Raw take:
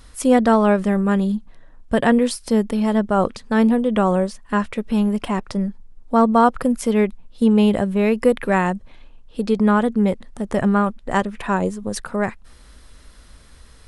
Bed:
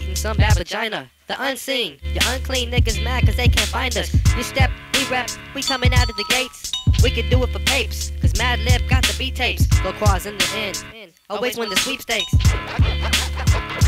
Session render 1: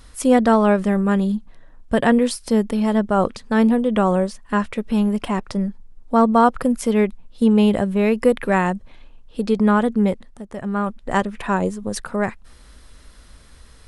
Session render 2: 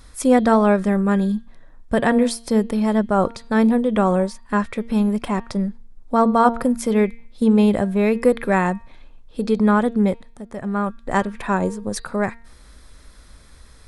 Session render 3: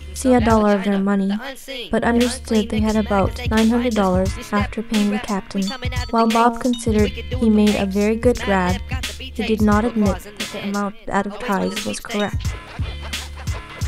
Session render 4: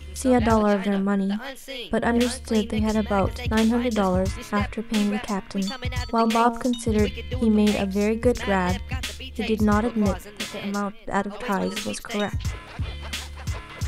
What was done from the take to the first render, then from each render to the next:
0:10.06–0:11.02: duck −11 dB, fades 0.40 s
notch filter 2,900 Hz, Q 8.6; hum removal 231.2 Hz, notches 21
mix in bed −8.5 dB
level −4.5 dB

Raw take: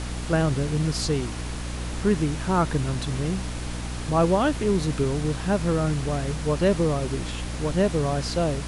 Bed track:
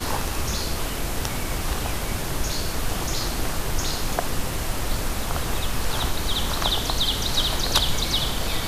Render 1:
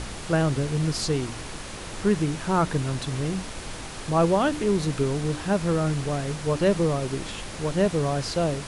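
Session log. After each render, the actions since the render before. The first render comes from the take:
hum removal 60 Hz, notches 5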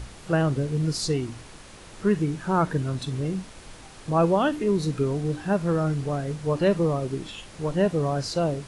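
noise reduction from a noise print 9 dB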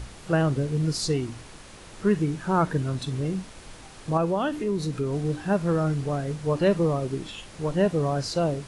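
0:04.17–0:05.13: downward compressor 1.5 to 1, threshold −28 dBFS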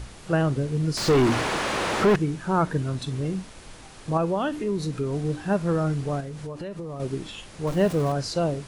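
0:00.97–0:02.16: mid-hump overdrive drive 38 dB, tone 1,200 Hz, clips at −10.5 dBFS
0:06.20–0:07.00: downward compressor 8 to 1, threshold −31 dBFS
0:07.67–0:08.12: converter with a step at zero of −33 dBFS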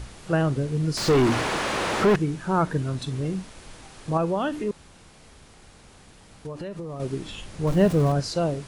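0:04.71–0:06.45: fill with room tone
0:07.27–0:08.20: low-shelf EQ 210 Hz +7.5 dB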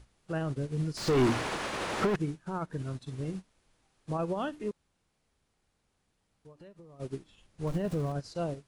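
brickwall limiter −19 dBFS, peak gain reduction 11 dB
expander for the loud parts 2.5 to 1, over −39 dBFS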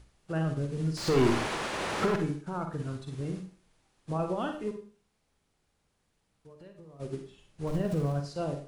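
four-comb reverb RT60 0.43 s, DRR 5 dB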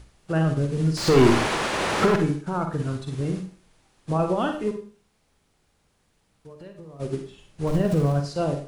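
level +8 dB

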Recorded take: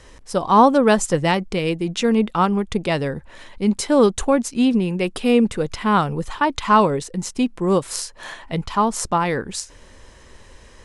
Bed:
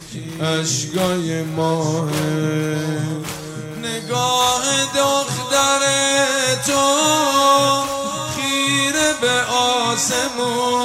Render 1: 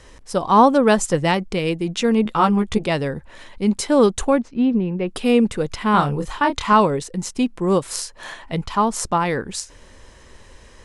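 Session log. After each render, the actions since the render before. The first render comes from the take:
0:02.24–0:02.85: double-tracking delay 14 ms −3 dB
0:04.38–0:05.09: head-to-tape spacing loss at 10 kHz 35 dB
0:05.91–0:06.73: double-tracking delay 28 ms −6 dB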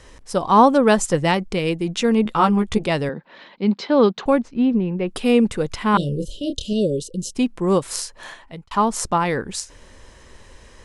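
0:03.09–0:04.26: elliptic band-pass filter 170–4,400 Hz
0:05.97–0:07.35: Chebyshev band-stop filter 580–2,900 Hz, order 5
0:08.12–0:08.71: fade out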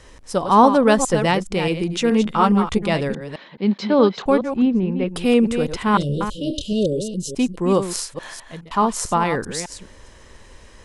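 delay that plays each chunk backwards 210 ms, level −9 dB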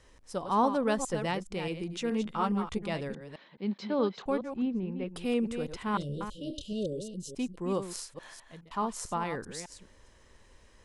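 level −13.5 dB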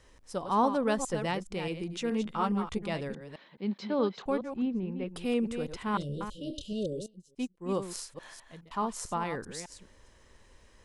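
0:07.06–0:07.69: expander for the loud parts 2.5 to 1, over −46 dBFS

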